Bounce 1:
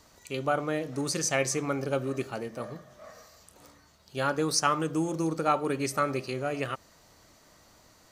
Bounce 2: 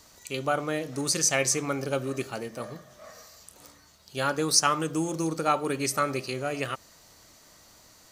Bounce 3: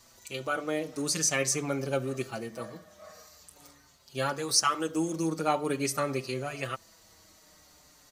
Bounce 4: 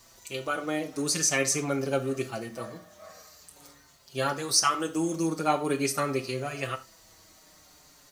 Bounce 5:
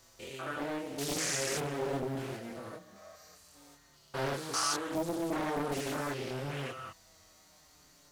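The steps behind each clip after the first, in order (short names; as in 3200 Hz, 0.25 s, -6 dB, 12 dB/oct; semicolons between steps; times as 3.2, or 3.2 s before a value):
high shelf 2900 Hz +7.5 dB
endless flanger 5.5 ms -0.46 Hz
requantised 12-bit, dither triangular; non-linear reverb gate 0.12 s falling, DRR 8.5 dB; gain +1.5 dB
stepped spectrum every 0.2 s; chorus voices 2, 0.3 Hz, delay 25 ms, depth 4.3 ms; Doppler distortion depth 0.79 ms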